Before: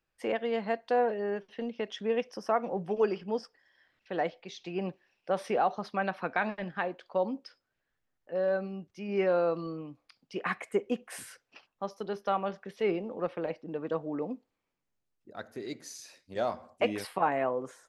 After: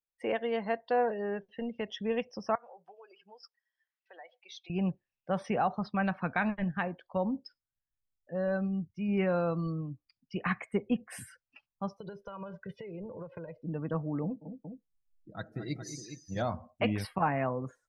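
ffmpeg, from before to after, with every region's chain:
ffmpeg -i in.wav -filter_complex "[0:a]asettb=1/sr,asplit=3[link_01][link_02][link_03];[link_01]atrim=end=2.554[link_04];[link_02]atrim=start=2.55:end=4.7,asetpts=PTS-STARTPTS,afade=type=in:duration=0.004:curve=qsin,afade=type=out:start_time=2.146:duration=0.004:curve=qsin,acompressor=threshold=-38dB:ratio=10:attack=3.2:release=140:knee=1:detection=peak,highpass=740[link_05];[link_03]atrim=start=4.696[link_06];[link_04][link_05]acrossfade=duration=0.004:curve1=hsin:curve2=qsin[link_07];[link_07][link_06]acrossfade=duration=0.004:curve1=qsin:curve2=hsin,asettb=1/sr,asplit=3[link_08][link_09][link_10];[link_08]atrim=end=11.994[link_11];[link_09]atrim=start=11.99:end=13.64,asetpts=PTS-STARTPTS,afade=type=in:duration=0.004:curve=qsin,afade=type=out:start_time=1.646:duration=0.004:curve=qsin,aecho=1:1:2:0.81,atrim=end_sample=72765,acompressor=threshold=-36dB:ratio=20:attack=3.2:release=140:knee=1:detection=peak[link_12];[link_10]atrim=start=13.636[link_13];[link_11][link_12]acrossfade=duration=0.004:curve1=hsin:curve2=qsin[link_14];[link_14][link_13]acrossfade=duration=0.004:curve1=qsin:curve2=hsin,asettb=1/sr,asplit=3[link_15][link_16][link_17];[link_15]atrim=end=14.234[link_18];[link_16]atrim=start=14.23:end=16.42,asetpts=PTS-STARTPTS,afade=type=in:duration=0.004:curve=qsin,afade=type=out:start_time=2.186:duration=0.004:curve=qsin,aecho=1:1:6.2:0.5,atrim=end_sample=96579,aecho=1:1:183|222|414:0.158|0.335|0.335,atrim=end_sample=96579[link_19];[link_17]atrim=start=16.416[link_20];[link_18][link_19]acrossfade=duration=0.004:curve1=hsin:curve2=qsin[link_21];[link_21][link_20]acrossfade=duration=0.004:curve1=qsin:curve2=hsin,afftdn=noise_reduction=22:noise_floor=-49,asubboost=boost=9.5:cutoff=130" out.wav

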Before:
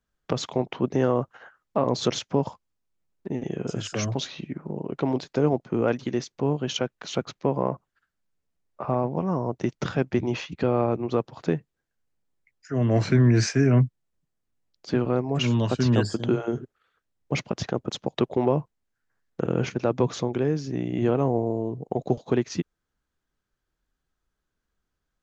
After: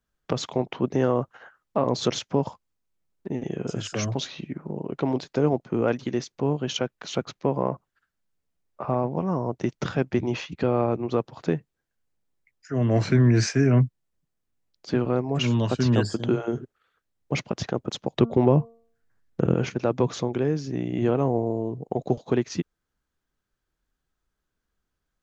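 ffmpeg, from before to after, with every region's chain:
ffmpeg -i in.wav -filter_complex "[0:a]asettb=1/sr,asplit=3[link_01][link_02][link_03];[link_01]atrim=end=18.154[link_04];[link_02]atrim=start=18.15:end=19.54,asetpts=PTS-STARTPTS,afade=type=in:duration=0.004:curve=qsin,afade=type=out:start_time=1.386:duration=0.004:curve=qsin,lowshelf=frequency=250:gain=9.5,bandreject=frequency=229.8:width_type=h:width=4,bandreject=frequency=459.6:width_type=h:width=4,bandreject=frequency=689.4:width_type=h:width=4,bandreject=frequency=919.2:width_type=h:width=4,bandreject=frequency=1149:width_type=h:width=4,bandreject=frequency=1378.8:width_type=h:width=4[link_05];[link_03]atrim=start=19.536[link_06];[link_04][link_05]acrossfade=duration=0.004:curve1=hsin:curve2=qsin[link_07];[link_07][link_06]acrossfade=duration=0.004:curve1=qsin:curve2=hsin" out.wav

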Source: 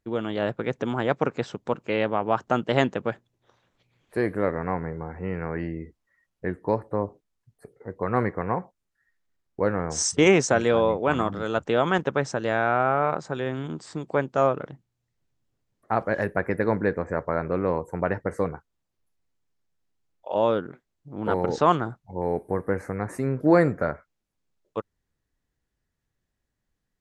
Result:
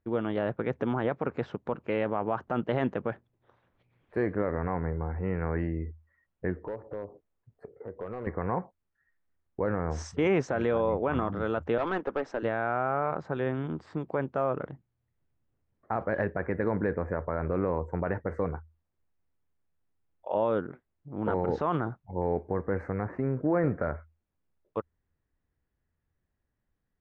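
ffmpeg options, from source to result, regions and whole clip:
ffmpeg -i in.wav -filter_complex "[0:a]asettb=1/sr,asplit=3[link_01][link_02][link_03];[link_01]atrim=end=6.564[link_04];[link_02]atrim=start=6.56:end=8.27,asetpts=PTS-STARTPTS,afade=type=in:duration=0.004:curve=qsin,afade=type=out:start_time=1.706:duration=0.004:curve=qsin,equalizer=frequency=500:width=1.1:gain=7.5,acompressor=threshold=-38dB:ratio=2.5:attack=3.2:release=140:knee=1:detection=peak,asoftclip=type=hard:threshold=-28.5dB[link_05];[link_03]atrim=start=8.266[link_06];[link_04][link_05]acrossfade=duration=0.004:curve1=hsin:curve2=qsin[link_07];[link_07][link_06]acrossfade=duration=0.004:curve1=qsin:curve2=hsin,asettb=1/sr,asplit=3[link_08][link_09][link_10];[link_08]atrim=end=11.784[link_11];[link_09]atrim=start=11.78:end=12.43,asetpts=PTS-STARTPTS,afade=type=in:duration=0.004:curve=qsin,afade=type=out:start_time=0.646:duration=0.004:curve=qsin,highpass=frequency=250:width=0.5412,highpass=frequency=250:width=1.3066,aeval=exprs='(tanh(12.6*val(0)+0.2)-tanh(0.2))/12.6':channel_layout=same[link_12];[link_10]atrim=start=12.426[link_13];[link_11][link_12]acrossfade=duration=0.004:curve1=hsin:curve2=qsin[link_14];[link_14][link_13]acrossfade=duration=0.004:curve1=qsin:curve2=hsin,asettb=1/sr,asplit=3[link_15][link_16][link_17];[link_15]atrim=end=23.054[link_18];[link_16]atrim=start=23.05:end=23.64,asetpts=PTS-STARTPTS,afade=type=in:duration=0.004:curve=qsin,afade=type=out:start_time=0.586:duration=0.004:curve=qsin,lowpass=2300,acompressor=threshold=-24dB:ratio=2:attack=3.2:release=140:knee=1:detection=peak[link_19];[link_17]atrim=start=23.636[link_20];[link_18][link_19]acrossfade=duration=0.004:curve1=hsin:curve2=qsin[link_21];[link_21][link_20]acrossfade=duration=0.004:curve1=qsin:curve2=hsin,lowpass=2100,equalizer=frequency=80:width_type=o:width=0.2:gain=10,alimiter=limit=-16dB:level=0:latency=1:release=36,volume=-1dB" out.wav

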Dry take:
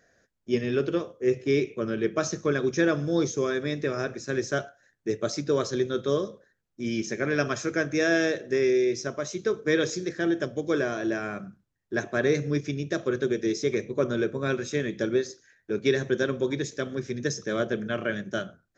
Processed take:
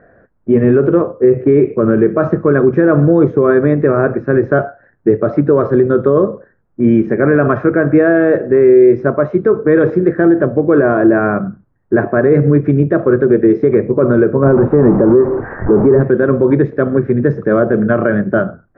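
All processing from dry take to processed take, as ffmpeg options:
ffmpeg -i in.wav -filter_complex "[0:a]asettb=1/sr,asplit=3[link_01][link_02][link_03];[link_01]atrim=end=14.444[link_04];[link_02]atrim=start=14.44:end=16.01,asetpts=PTS-STARTPTS,afade=type=in:duration=0.004:curve=qsin,afade=type=out:start_time=1.566:duration=0.004:curve=qsin,aeval=exprs='val(0)+0.5*0.0422*sgn(val(0))':channel_layout=same,lowpass=1000[link_05];[link_03]atrim=start=16.006[link_06];[link_04][link_05]acrossfade=duration=0.004:curve1=hsin:curve2=qsin[link_07];[link_07][link_06]acrossfade=duration=0.004:curve1=qsin:curve2=hsin,lowpass=frequency=1400:width=0.5412,lowpass=frequency=1400:width=1.3066,alimiter=level_in=21dB:limit=-1dB:release=50:level=0:latency=1,volume=-1dB" out.wav

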